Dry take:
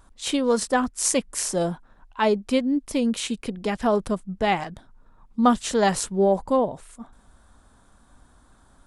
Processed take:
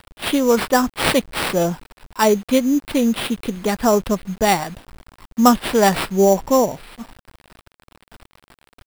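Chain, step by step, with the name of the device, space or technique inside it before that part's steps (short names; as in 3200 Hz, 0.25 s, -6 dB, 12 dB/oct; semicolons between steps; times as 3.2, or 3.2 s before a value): early 8-bit sampler (sample-rate reducer 6500 Hz, jitter 0%; bit-crush 8-bit); gain +5.5 dB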